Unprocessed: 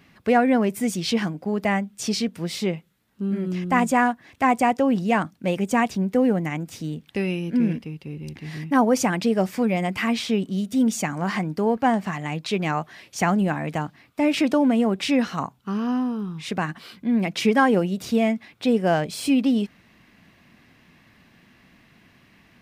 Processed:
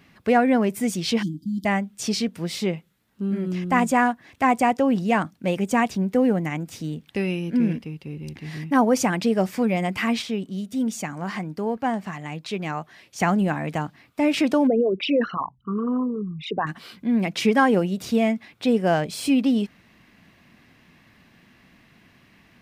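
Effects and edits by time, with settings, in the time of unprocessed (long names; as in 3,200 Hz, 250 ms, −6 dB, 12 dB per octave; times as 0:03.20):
0:01.22–0:01.65: time-frequency box erased 350–3,000 Hz
0:10.22–0:13.20: clip gain −4.5 dB
0:14.67–0:16.67: spectral envelope exaggerated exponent 3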